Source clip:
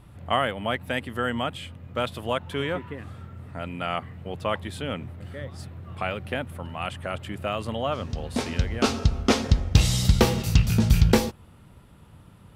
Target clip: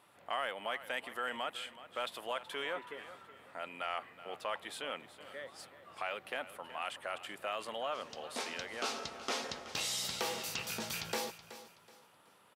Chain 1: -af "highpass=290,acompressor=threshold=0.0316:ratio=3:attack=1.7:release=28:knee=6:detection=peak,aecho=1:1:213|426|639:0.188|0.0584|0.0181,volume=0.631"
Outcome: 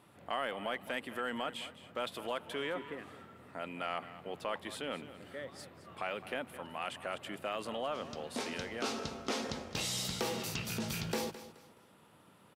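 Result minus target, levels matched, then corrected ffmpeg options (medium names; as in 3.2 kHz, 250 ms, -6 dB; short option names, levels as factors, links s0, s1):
echo 162 ms early; 250 Hz band +8.0 dB
-af "highpass=580,acompressor=threshold=0.0316:ratio=3:attack=1.7:release=28:knee=6:detection=peak,aecho=1:1:375|750|1125:0.188|0.0584|0.0181,volume=0.631"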